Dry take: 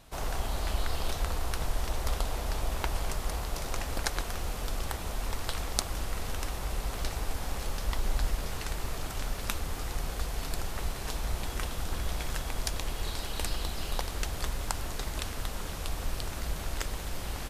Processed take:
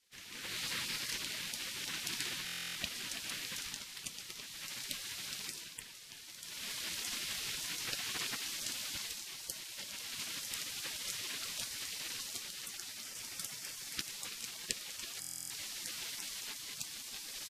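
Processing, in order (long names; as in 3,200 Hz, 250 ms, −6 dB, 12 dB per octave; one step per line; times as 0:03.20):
high-pass filter 590 Hz 6 dB per octave
far-end echo of a speakerphone 330 ms, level −8 dB
automatic gain control gain up to 16 dB
low-pass filter 2,600 Hz 6 dB per octave
gate on every frequency bin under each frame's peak −15 dB weak
buffer that repeats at 0:02.45/0:15.20, samples 1,024, times 12
level −2.5 dB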